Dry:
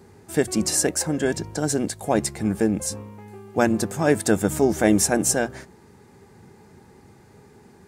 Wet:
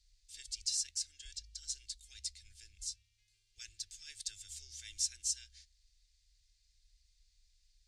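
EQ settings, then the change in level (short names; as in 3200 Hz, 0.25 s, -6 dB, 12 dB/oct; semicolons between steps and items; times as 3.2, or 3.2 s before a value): inverse Chebyshev band-stop 130–1100 Hz, stop band 70 dB; tape spacing loss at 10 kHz 31 dB; +9.5 dB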